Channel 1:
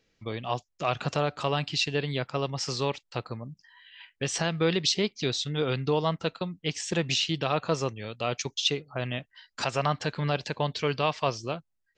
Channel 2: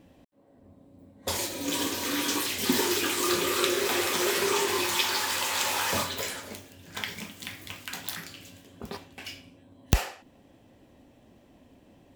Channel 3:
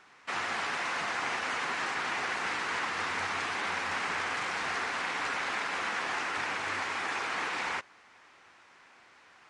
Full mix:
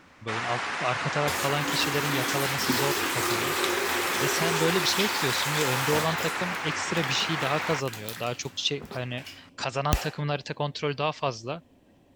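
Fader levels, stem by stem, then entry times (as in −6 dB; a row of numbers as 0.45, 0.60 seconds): −1.0, −2.5, +2.0 decibels; 0.00, 0.00, 0.00 seconds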